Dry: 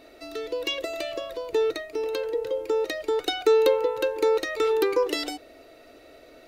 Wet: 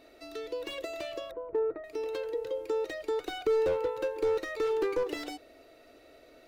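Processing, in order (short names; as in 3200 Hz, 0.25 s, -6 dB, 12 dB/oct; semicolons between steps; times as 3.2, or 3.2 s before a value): 1.31–1.84 LPF 1400 Hz 24 dB/oct; slew limiter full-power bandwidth 62 Hz; gain -6 dB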